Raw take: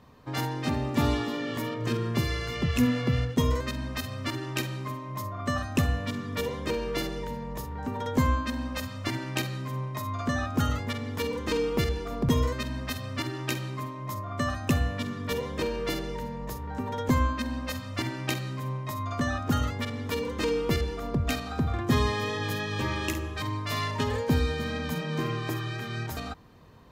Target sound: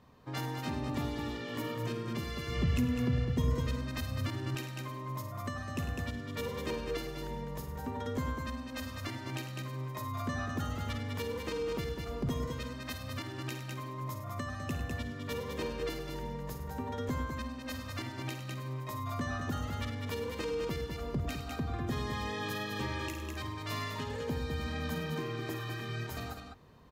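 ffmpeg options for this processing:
-filter_complex "[0:a]aecho=1:1:54|101|203:0.224|0.266|0.473,alimiter=limit=-19dB:level=0:latency=1:release=468,asettb=1/sr,asplit=3[a][b][c];[a]atrim=end=2.474[d];[b]atrim=start=2.47:end=4.55,asetpts=PTS-STARTPTS,afade=t=in:d=0.004:c=qsin,afade=t=out:st=2.076:d=0.004:c=qsin,lowshelf=f=200:g=9[e];[c]atrim=start=4.546[f];[d][e]acrossfade=d=0.004:c1=hsin:c2=qsin[g];[g][f]acrossfade=d=0.004:c1=qsin:c2=hsin,volume=-6dB"

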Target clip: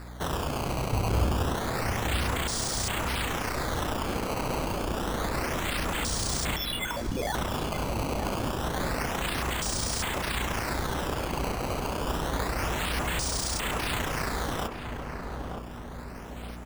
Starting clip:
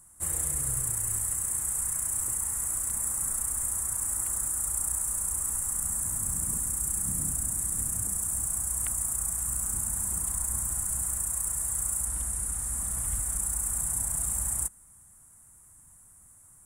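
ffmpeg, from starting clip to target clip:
-filter_complex "[0:a]asettb=1/sr,asplit=3[a][b][c];[a]atrim=end=6.564[d];[b]atrim=start=6.56:end=7.35,asetpts=PTS-STARTPTS,afade=t=in:d=0.004:c=qsin,afade=t=out:st=0.786:d=0.004:c=qsin,lowpass=f=3k:t=q:w=0.5098,lowpass=f=3k:t=q:w=0.6013,lowpass=f=3k:t=q:w=0.9,lowpass=f=3k:t=q:w=2.563,afreqshift=-3500[e];[c]atrim=start=7.346[f];[d][e]acrossfade=d=0.004:c1=hsin:c2=qsin[g];[g][f]acrossfade=d=0.004:c1=qsin:c2=hsin,acrossover=split=2600[h][i];[i]acompressor=threshold=-35dB:ratio=4:attack=1:release=60[j];[h][j]amix=inputs=2:normalize=0,acrossover=split=360[k][l];[k]asoftclip=type=tanh:threshold=-38.5dB[m];[m][l]amix=inputs=2:normalize=0,acrusher=samples=14:mix=1:aa=0.000001:lfo=1:lforange=22.4:lforate=0.28,asettb=1/sr,asplit=3[n][o][p];[n]atrim=end=0.924[q];[o]atrim=start=0.92:end=1.55,asetpts=PTS-STARTPTS,afade=t=in:d=0.004:c=qsin,afade=t=out:st=0.626:d=0.004:c=qsin,equalizer=f=63:w=0.71:g=12.5[r];[p]atrim=start=1.546[s];[q][r]acrossfade=d=0.004:c1=hsin:c2=qsin[t];[t][s]acrossfade=d=0.004:c1=qsin:c2=hsin,aeval=exprs='val(0)+0.00398*(sin(2*PI*60*n/s)+sin(2*PI*2*60*n/s)/2+sin(2*PI*3*60*n/s)/3+sin(2*PI*4*60*n/s)/4+sin(2*PI*5*60*n/s)/5)':c=same,asplit=2[u][v];[v]adelay=921,lowpass=f=1.3k:p=1,volume=-5dB,asplit=2[w][x];[x]adelay=921,lowpass=f=1.3k:p=1,volume=0.53,asplit=2[y][z];[z]adelay=921,lowpass=f=1.3k:p=1,volume=0.53,asplit=2[aa][ab];[ab]adelay=921,lowpass=f=1.3k:p=1,volume=0.53,asplit=2[ac][ad];[ad]adelay=921,lowpass=f=1.3k:p=1,volume=0.53,asplit=2[ae][af];[af]adelay=921,lowpass=f=1.3k:p=1,volume=0.53,asplit=2[ag][ah];[ah]adelay=921,lowpass=f=1.3k:p=1,volume=0.53[ai];[w][y][aa][ac][ae][ag][ai]amix=inputs=7:normalize=0[aj];[u][aj]amix=inputs=2:normalize=0,volume=7dB"

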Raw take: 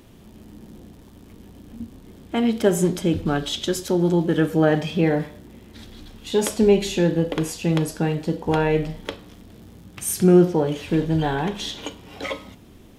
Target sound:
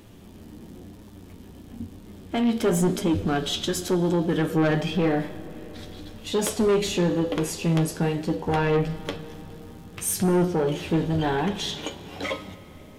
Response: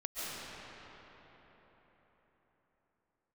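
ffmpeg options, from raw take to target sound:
-filter_complex "[0:a]flanger=delay=9.3:depth=3.7:regen=46:speed=0.97:shape=triangular,asoftclip=type=tanh:threshold=-21dB,asplit=2[a][b];[1:a]atrim=start_sample=2205[c];[b][c]afir=irnorm=-1:irlink=0,volume=-20dB[d];[a][d]amix=inputs=2:normalize=0,volume=4dB"

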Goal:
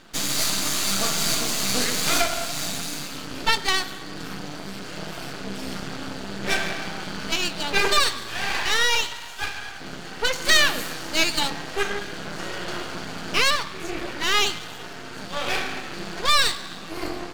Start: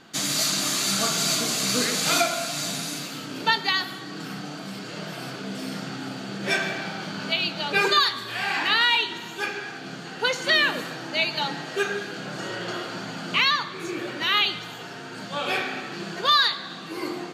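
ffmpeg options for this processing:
-filter_complex "[0:a]asettb=1/sr,asplit=3[a][b][c];[a]atrim=end=8.534[d];[b]atrim=start=8.53:end=9.8,asetpts=PTS-STARTPTS,afade=t=in:d=0.004:c=qsin,afade=t=out:st=1.266:d=0.004:c=qsin,highpass=f=710:w=0.5412,highpass=f=710:w=1.3066[e];[c]atrim=start=9.796[f];[d][e]acrossfade=d=0.004:c1=hsin:c2=qsin[g];[g][f]acrossfade=d=0.004:c1=qsin:c2=hsin,asettb=1/sr,asplit=3[h][i][j];[h]atrim=end=10.454[k];[i]atrim=start=10.45:end=11.5,asetpts=PTS-STARTPTS,afade=t=in:d=0.004:c=qsin,afade=t=out:st=1.046:d=0.004:c=qsin,aemphasis=mode=production:type=50kf[l];[j]atrim=start=11.496[m];[k][l]acrossfade=d=0.004:c1=hsin:c2=qsin[n];[n][m]acrossfade=d=0.004:c1=qsin:c2=hsin,aeval=exprs='max(val(0),0)':c=same,volume=4.5dB"

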